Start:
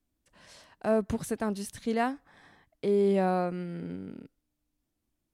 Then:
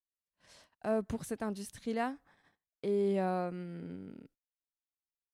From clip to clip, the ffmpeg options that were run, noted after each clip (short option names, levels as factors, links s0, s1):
-af "agate=range=0.0355:threshold=0.00178:ratio=16:detection=peak,volume=0.501"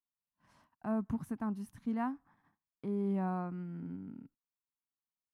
-af "equalizer=f=125:t=o:w=1:g=6,equalizer=f=250:t=o:w=1:g=9,equalizer=f=500:t=o:w=1:g=-12,equalizer=f=1000:t=o:w=1:g=10,equalizer=f=2000:t=o:w=1:g=-3,equalizer=f=4000:t=o:w=1:g=-10,equalizer=f=8000:t=o:w=1:g=-10,volume=0.562"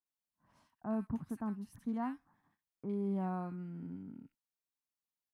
-filter_complex "[0:a]acrossover=split=1700[s0][s1];[s1]adelay=60[s2];[s0][s2]amix=inputs=2:normalize=0,volume=0.794"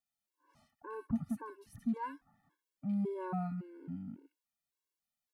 -af "afftfilt=real='re*gt(sin(2*PI*1.8*pts/sr)*(1-2*mod(floor(b*sr/1024/290),2)),0)':imag='im*gt(sin(2*PI*1.8*pts/sr)*(1-2*mod(floor(b*sr/1024/290),2)),0)':win_size=1024:overlap=0.75,volume=1.68"